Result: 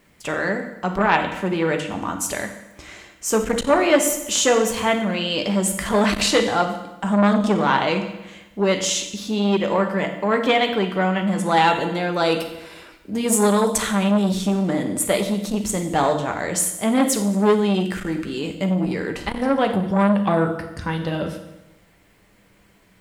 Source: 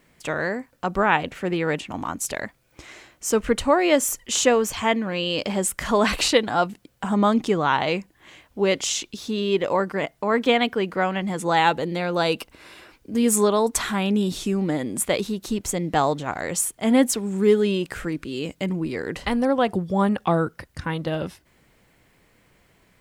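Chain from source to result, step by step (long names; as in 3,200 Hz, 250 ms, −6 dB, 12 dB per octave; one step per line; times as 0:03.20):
convolution reverb RT60 0.95 s, pre-delay 5 ms, DRR 4 dB
saturating transformer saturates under 1,000 Hz
level +1.5 dB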